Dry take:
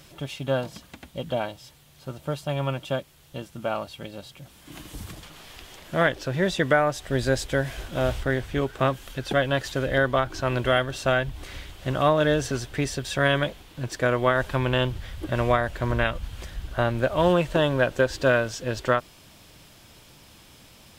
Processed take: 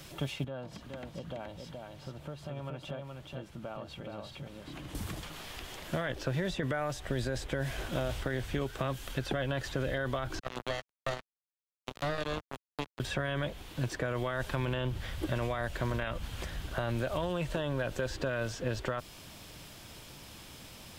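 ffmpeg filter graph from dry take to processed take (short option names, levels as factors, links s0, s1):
-filter_complex "[0:a]asettb=1/sr,asplit=3[s0][s1][s2];[s0]atrim=end=0.444[s3];[s1]atrim=start=0.44:end=4.95,asetpts=PTS-STARTPTS,afade=t=in:d=0.004:c=qsin,afade=t=out:st=4.506:d=0.004:c=qsin,lowpass=f=2200:p=1,acompressor=threshold=0.00794:ratio=4:attack=3.2:release=140:knee=1:detection=peak,aecho=1:1:423:0.631,atrim=end_sample=198891[s4];[s2]atrim=start=4.946[s5];[s3][s4]acrossfade=d=0.004:c1=hsin:c2=qsin[s6];[s6][s5]acrossfade=d=0.004:c1=qsin:c2=hsin,asettb=1/sr,asplit=3[s7][s8][s9];[s7]atrim=end=10.394[s10];[s8]atrim=start=10.39:end=13,asetpts=PTS-STARTPTS,afade=t=in:d=0.004:c=qsin,afade=t=out:st=2.606:d=0.004:c=qsin,asuperstop=centerf=1400:order=20:qfactor=0.79,acrusher=bits=2:mix=0:aa=0.5[s11];[s9]atrim=start=12.996[s12];[s10][s11]acrossfade=d=0.004:c1=hsin:c2=qsin[s13];[s13][s12]acrossfade=d=0.004:c1=qsin:c2=hsin,alimiter=limit=0.119:level=0:latency=1:release=16,acrossover=split=110|2600[s14][s15][s16];[s14]acompressor=threshold=0.01:ratio=4[s17];[s15]acompressor=threshold=0.0224:ratio=4[s18];[s16]acompressor=threshold=0.00398:ratio=4[s19];[s17][s18][s19]amix=inputs=3:normalize=0,volume=1.19"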